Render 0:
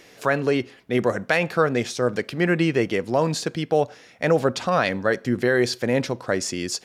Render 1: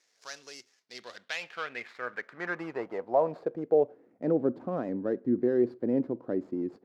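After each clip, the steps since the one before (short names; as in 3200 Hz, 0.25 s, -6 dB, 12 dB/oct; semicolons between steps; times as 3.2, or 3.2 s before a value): median filter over 15 samples; band-pass sweep 5700 Hz -> 300 Hz, 0.71–4.13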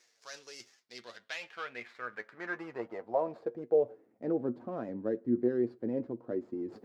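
reverse; upward compressor, threshold -37 dBFS; reverse; flange 1.1 Hz, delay 8.2 ms, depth 1.2 ms, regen +39%; gain -1 dB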